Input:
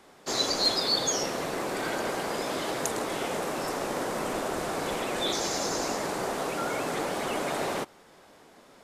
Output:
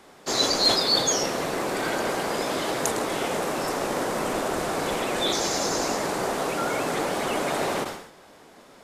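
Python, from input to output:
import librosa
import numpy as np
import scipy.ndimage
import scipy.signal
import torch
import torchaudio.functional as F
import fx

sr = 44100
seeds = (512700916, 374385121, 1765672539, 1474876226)

y = fx.sustainer(x, sr, db_per_s=80.0)
y = y * librosa.db_to_amplitude(4.0)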